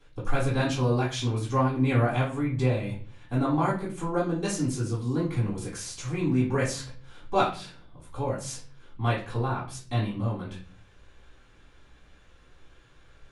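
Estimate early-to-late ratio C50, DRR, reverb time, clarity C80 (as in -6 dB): 7.0 dB, -7.5 dB, 0.40 s, 12.0 dB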